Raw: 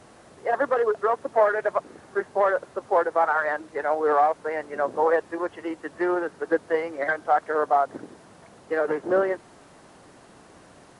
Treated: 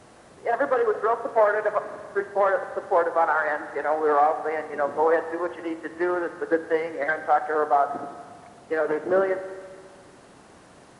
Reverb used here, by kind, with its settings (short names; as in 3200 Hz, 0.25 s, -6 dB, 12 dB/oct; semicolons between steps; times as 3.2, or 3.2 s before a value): spring tank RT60 1.7 s, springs 37/55 ms, chirp 30 ms, DRR 10 dB